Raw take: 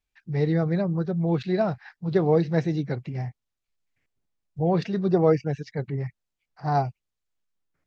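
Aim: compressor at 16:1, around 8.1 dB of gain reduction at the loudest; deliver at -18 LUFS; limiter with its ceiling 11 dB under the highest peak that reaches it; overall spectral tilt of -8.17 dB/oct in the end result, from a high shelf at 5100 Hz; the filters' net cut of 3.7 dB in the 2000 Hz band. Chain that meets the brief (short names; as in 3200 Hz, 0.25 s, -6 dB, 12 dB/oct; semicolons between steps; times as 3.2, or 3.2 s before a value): bell 2000 Hz -5.5 dB; high shelf 5100 Hz +5.5 dB; compressor 16:1, threshold -22 dBFS; gain +17 dB; limiter -9 dBFS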